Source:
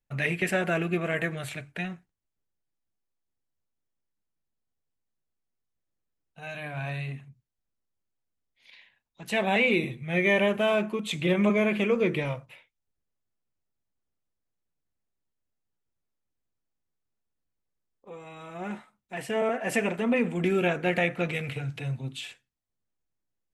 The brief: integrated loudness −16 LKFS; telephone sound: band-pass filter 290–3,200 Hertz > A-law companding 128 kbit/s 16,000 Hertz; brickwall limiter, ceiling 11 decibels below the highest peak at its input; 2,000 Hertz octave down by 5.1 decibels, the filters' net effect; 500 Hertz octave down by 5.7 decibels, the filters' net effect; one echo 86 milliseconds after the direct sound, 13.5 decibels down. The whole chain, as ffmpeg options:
ffmpeg -i in.wav -af "equalizer=frequency=500:width_type=o:gain=-6.5,equalizer=frequency=2000:width_type=o:gain=-5,alimiter=level_in=2.5dB:limit=-24dB:level=0:latency=1,volume=-2.5dB,highpass=290,lowpass=3200,aecho=1:1:86:0.211,volume=23.5dB" -ar 16000 -c:a pcm_alaw out.wav

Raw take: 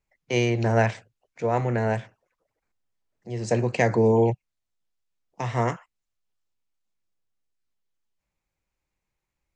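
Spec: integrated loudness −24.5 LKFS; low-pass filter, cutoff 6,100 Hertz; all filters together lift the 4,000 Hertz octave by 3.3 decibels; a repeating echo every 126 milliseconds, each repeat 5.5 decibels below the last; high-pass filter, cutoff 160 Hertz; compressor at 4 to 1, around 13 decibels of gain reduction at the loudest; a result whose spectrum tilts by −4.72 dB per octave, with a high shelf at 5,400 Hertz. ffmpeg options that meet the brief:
ffmpeg -i in.wav -af "highpass=160,lowpass=6100,equalizer=frequency=4000:width_type=o:gain=7,highshelf=frequency=5400:gain=-3.5,acompressor=threshold=-32dB:ratio=4,aecho=1:1:126|252|378|504|630|756|882:0.531|0.281|0.149|0.079|0.0419|0.0222|0.0118,volume=10.5dB" out.wav

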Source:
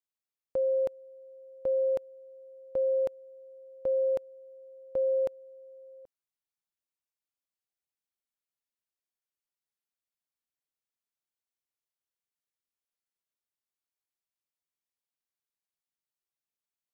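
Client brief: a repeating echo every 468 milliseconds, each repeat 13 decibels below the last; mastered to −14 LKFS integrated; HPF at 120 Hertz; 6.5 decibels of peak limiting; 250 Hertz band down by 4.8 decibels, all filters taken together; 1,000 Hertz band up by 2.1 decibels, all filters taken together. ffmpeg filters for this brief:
ffmpeg -i in.wav -af "highpass=120,equalizer=frequency=250:width_type=o:gain=-7,equalizer=frequency=1000:width_type=o:gain=3.5,alimiter=level_in=6dB:limit=-24dB:level=0:latency=1,volume=-6dB,aecho=1:1:468|936|1404:0.224|0.0493|0.0108,volume=24dB" out.wav

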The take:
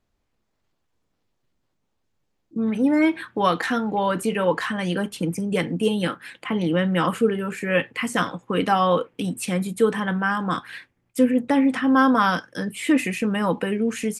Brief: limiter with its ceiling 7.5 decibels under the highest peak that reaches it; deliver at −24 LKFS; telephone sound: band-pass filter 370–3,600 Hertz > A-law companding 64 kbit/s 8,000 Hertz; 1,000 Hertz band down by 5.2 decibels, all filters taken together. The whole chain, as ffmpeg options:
ffmpeg -i in.wav -af "equalizer=frequency=1000:width_type=o:gain=-6.5,alimiter=limit=-15.5dB:level=0:latency=1,highpass=370,lowpass=3600,volume=5.5dB" -ar 8000 -c:a pcm_alaw out.wav

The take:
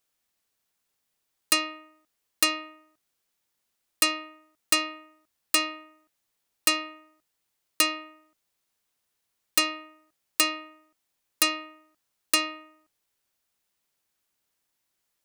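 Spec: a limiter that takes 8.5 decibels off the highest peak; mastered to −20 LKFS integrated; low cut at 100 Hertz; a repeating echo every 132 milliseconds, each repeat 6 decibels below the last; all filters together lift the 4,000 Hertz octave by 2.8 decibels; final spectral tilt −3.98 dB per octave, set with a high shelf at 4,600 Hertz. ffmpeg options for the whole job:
ffmpeg -i in.wav -af "highpass=100,equalizer=frequency=4000:width_type=o:gain=7.5,highshelf=frequency=4600:gain=-8,alimiter=limit=-16dB:level=0:latency=1,aecho=1:1:132|264|396|528|660|792:0.501|0.251|0.125|0.0626|0.0313|0.0157,volume=9.5dB" out.wav

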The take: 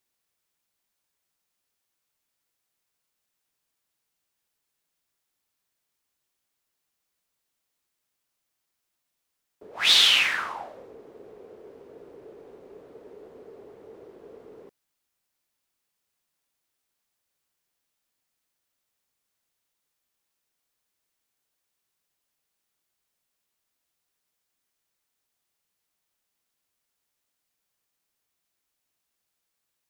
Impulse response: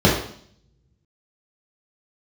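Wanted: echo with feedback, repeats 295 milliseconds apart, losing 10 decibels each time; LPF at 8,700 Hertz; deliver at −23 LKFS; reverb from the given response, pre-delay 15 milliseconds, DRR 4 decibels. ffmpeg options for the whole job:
-filter_complex "[0:a]lowpass=8700,aecho=1:1:295|590|885|1180:0.316|0.101|0.0324|0.0104,asplit=2[link_01][link_02];[1:a]atrim=start_sample=2205,adelay=15[link_03];[link_02][link_03]afir=irnorm=-1:irlink=0,volume=-27dB[link_04];[link_01][link_04]amix=inputs=2:normalize=0,volume=-4.5dB"

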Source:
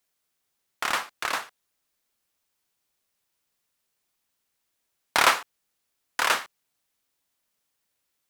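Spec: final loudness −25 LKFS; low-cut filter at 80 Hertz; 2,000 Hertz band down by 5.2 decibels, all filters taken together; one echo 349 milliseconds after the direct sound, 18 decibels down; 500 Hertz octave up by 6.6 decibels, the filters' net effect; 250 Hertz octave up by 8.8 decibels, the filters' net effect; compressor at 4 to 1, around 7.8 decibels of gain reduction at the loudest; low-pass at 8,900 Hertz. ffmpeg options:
ffmpeg -i in.wav -af "highpass=80,lowpass=8900,equalizer=frequency=250:width_type=o:gain=9,equalizer=frequency=500:width_type=o:gain=7,equalizer=frequency=2000:width_type=o:gain=-7.5,acompressor=threshold=-23dB:ratio=4,aecho=1:1:349:0.126,volume=6dB" out.wav

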